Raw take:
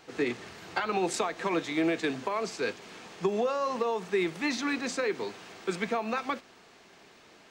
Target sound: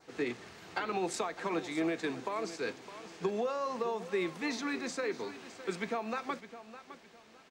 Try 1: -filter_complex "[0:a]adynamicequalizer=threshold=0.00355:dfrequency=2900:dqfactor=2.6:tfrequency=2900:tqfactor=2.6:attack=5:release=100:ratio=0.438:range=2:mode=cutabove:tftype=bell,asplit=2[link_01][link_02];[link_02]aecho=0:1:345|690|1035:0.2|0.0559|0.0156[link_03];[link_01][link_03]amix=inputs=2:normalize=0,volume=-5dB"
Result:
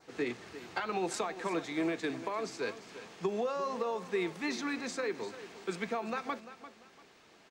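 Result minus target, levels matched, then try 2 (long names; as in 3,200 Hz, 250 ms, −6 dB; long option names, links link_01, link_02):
echo 265 ms early
-filter_complex "[0:a]adynamicequalizer=threshold=0.00355:dfrequency=2900:dqfactor=2.6:tfrequency=2900:tqfactor=2.6:attack=5:release=100:ratio=0.438:range=2:mode=cutabove:tftype=bell,asplit=2[link_01][link_02];[link_02]aecho=0:1:610|1220|1830:0.2|0.0559|0.0156[link_03];[link_01][link_03]amix=inputs=2:normalize=0,volume=-5dB"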